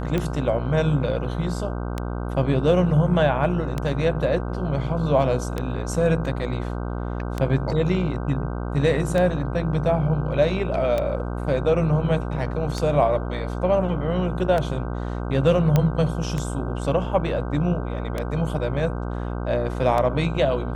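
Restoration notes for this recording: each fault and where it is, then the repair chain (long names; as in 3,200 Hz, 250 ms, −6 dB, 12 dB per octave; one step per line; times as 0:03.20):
mains buzz 60 Hz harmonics 26 −28 dBFS
scratch tick 33 1/3 rpm −12 dBFS
0:15.76: click −7 dBFS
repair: click removal
hum removal 60 Hz, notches 26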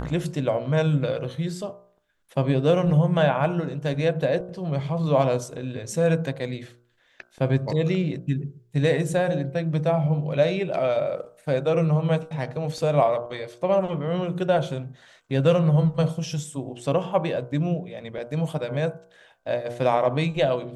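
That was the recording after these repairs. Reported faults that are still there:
none of them is left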